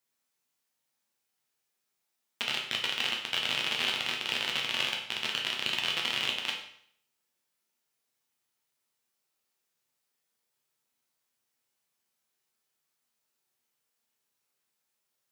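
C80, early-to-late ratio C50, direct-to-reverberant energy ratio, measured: 8.5 dB, 6.0 dB, −1.0 dB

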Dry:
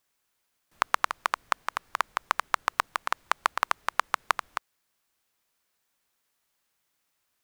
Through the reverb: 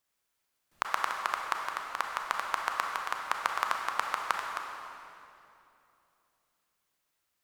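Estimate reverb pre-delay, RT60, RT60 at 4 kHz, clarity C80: 27 ms, 2.8 s, 2.3 s, 3.5 dB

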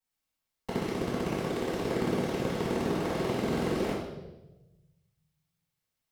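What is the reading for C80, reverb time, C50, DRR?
3.5 dB, 1.0 s, 0.5 dB, −16.5 dB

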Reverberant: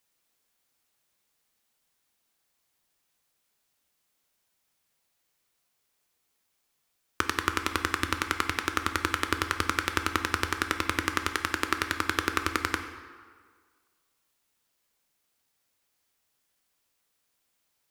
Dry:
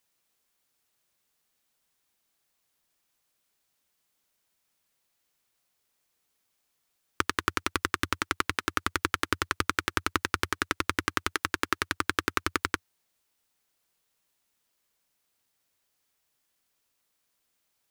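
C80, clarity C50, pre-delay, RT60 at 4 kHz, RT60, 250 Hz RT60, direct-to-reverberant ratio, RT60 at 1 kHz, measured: 10.0 dB, 8.5 dB, 10 ms, 1.2 s, 1.7 s, 1.6 s, 6.5 dB, 1.7 s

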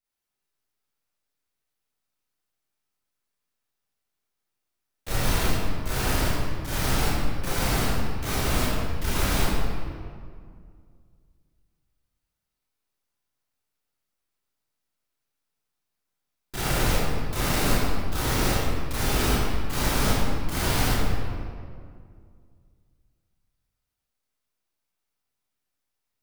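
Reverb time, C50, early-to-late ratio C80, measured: 2.2 s, −4.5 dB, −1.0 dB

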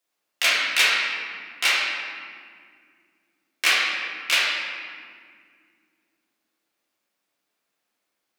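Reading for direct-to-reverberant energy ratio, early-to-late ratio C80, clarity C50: −7.0 dB, 1.0 dB, −1.5 dB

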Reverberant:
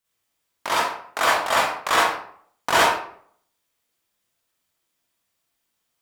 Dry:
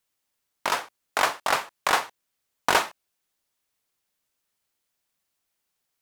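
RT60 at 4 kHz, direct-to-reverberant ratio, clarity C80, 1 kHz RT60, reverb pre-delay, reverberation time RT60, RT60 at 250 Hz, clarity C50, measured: 0.40 s, −8.5 dB, 3.5 dB, 0.60 s, 39 ms, 0.60 s, 0.60 s, −2.0 dB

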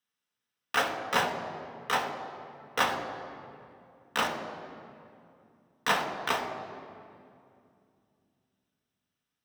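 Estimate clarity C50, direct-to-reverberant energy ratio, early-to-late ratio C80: 7.0 dB, 2.5 dB, 8.0 dB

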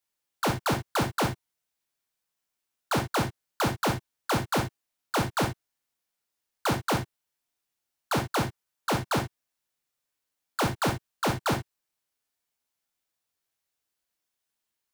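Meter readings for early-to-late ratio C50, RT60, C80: 8.0 dB, non-exponential decay, 20.0 dB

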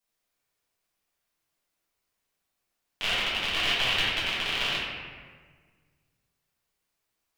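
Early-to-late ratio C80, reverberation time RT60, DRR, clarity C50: 1.0 dB, 1.6 s, −9.5 dB, −1.5 dB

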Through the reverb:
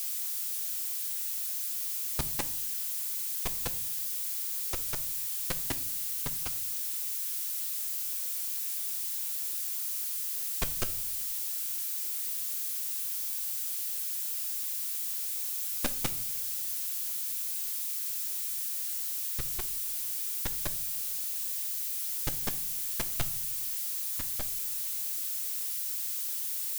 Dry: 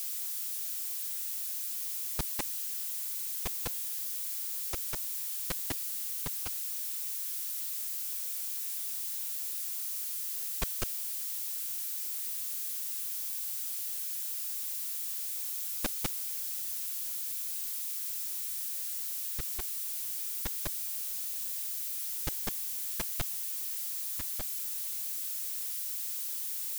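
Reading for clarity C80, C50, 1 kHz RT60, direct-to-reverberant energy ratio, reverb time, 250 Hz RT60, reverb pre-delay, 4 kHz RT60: 20.5 dB, 17.0 dB, 0.45 s, 10.5 dB, 0.55 s, 0.90 s, 7 ms, 0.30 s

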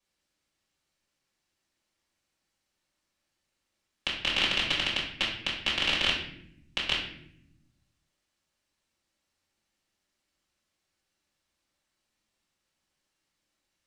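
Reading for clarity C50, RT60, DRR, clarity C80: 4.0 dB, 0.70 s, −6.5 dB, 7.5 dB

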